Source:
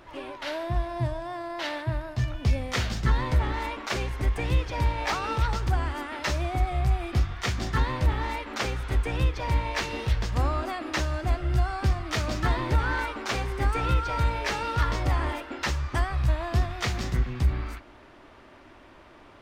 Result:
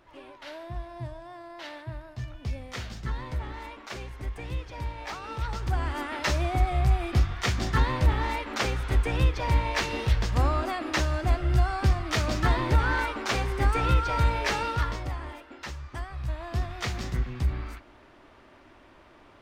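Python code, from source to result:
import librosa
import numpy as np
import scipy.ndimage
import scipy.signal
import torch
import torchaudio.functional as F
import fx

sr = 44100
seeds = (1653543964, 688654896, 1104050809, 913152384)

y = fx.gain(x, sr, db=fx.line((5.23, -9.0), (6.02, 1.5), (14.61, 1.5), (15.19, -10.0), (16.08, -10.0), (16.77, -3.0)))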